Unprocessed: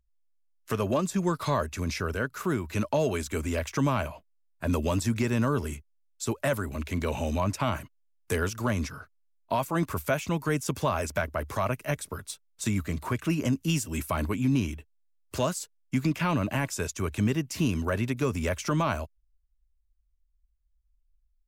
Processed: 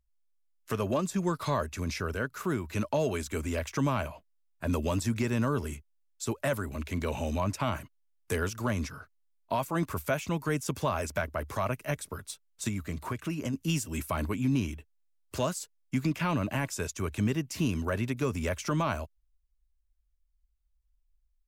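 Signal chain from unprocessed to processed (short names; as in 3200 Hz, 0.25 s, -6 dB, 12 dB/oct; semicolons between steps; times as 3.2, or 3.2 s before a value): 12.68–13.54 compressor 3:1, threshold -28 dBFS, peak gain reduction 6 dB; gain -2.5 dB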